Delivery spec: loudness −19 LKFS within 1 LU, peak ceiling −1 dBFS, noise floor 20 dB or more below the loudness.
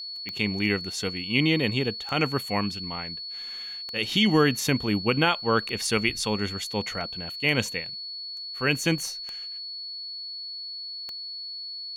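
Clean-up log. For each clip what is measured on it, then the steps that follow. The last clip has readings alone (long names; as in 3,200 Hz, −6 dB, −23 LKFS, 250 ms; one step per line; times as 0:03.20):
number of clicks 7; interfering tone 4,400 Hz; level of the tone −34 dBFS; integrated loudness −27.0 LKFS; sample peak −6.5 dBFS; target loudness −19.0 LKFS
→ click removal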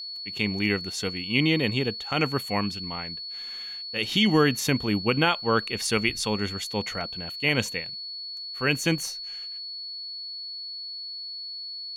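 number of clicks 0; interfering tone 4,400 Hz; level of the tone −34 dBFS
→ notch filter 4,400 Hz, Q 30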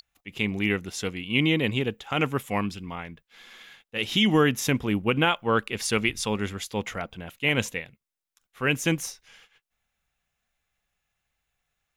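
interfering tone none found; integrated loudness −26.0 LKFS; sample peak −9.0 dBFS; target loudness −19.0 LKFS
→ level +7 dB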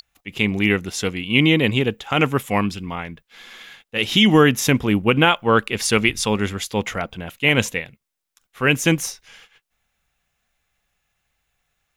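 integrated loudness −19.0 LKFS; sample peak −2.0 dBFS; background noise floor −80 dBFS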